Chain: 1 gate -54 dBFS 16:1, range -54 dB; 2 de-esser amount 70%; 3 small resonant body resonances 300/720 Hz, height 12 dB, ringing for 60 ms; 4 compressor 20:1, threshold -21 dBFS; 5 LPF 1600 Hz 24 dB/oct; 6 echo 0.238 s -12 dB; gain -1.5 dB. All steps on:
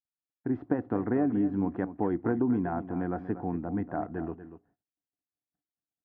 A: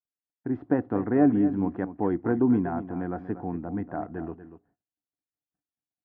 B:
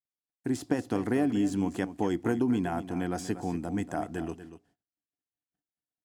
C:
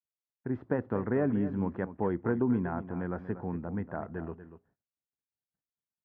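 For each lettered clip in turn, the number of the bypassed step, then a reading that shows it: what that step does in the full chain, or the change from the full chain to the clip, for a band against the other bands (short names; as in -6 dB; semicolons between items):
4, mean gain reduction 1.5 dB; 5, 2 kHz band +4.0 dB; 3, 1 kHz band -4.0 dB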